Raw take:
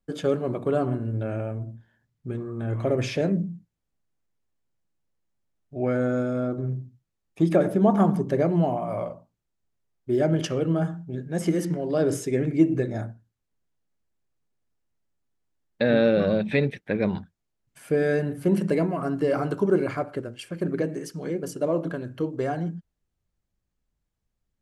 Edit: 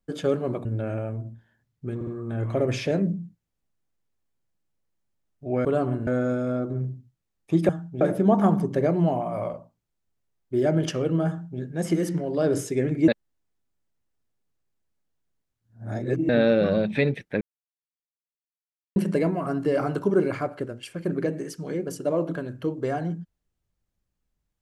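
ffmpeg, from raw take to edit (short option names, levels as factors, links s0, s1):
-filter_complex "[0:a]asplit=12[s0][s1][s2][s3][s4][s5][s6][s7][s8][s9][s10][s11];[s0]atrim=end=0.652[s12];[s1]atrim=start=1.068:end=2.432[s13];[s2]atrim=start=2.368:end=2.432[s14];[s3]atrim=start=2.368:end=5.952[s15];[s4]atrim=start=0.648:end=1.072[s16];[s5]atrim=start=5.948:end=7.572[s17];[s6]atrim=start=10.838:end=11.162[s18];[s7]atrim=start=7.568:end=12.642[s19];[s8]atrim=start=12.638:end=15.852,asetpts=PTS-STARTPTS,areverse[s20];[s9]atrim=start=15.848:end=16.97,asetpts=PTS-STARTPTS,afade=t=out:st=1.118:d=0.004:c=hsin[s21];[s10]atrim=start=16.97:end=18.52,asetpts=PTS-STARTPTS,volume=0[s22];[s11]atrim=start=18.52,asetpts=PTS-STARTPTS,afade=t=in:d=0.004:c=hsin[s23];[s12][s13]acrossfade=d=0.004:c1=hsin:c2=hsin[s24];[s24][s14]acrossfade=d=0.004:c1=hsin:c2=hsin[s25];[s25][s15]acrossfade=d=0.004:c1=hsin:c2=hsin[s26];[s26][s16]acrossfade=d=0.004:c1=hsin:c2=hsin[s27];[s27][s17]acrossfade=d=0.004:c1=hsin:c2=hsin[s28];[s28][s18]acrossfade=d=0.004:c1=hsin:c2=hsin[s29];[s29][s19]acrossfade=d=0.004:c1=hsin:c2=hsin[s30];[s30][s20]acrossfade=d=0.004:c1=hsin:c2=hsin[s31];[s21][s22][s23]concat=n=3:v=0:a=1[s32];[s31][s32]acrossfade=d=0.004:c1=hsin:c2=hsin"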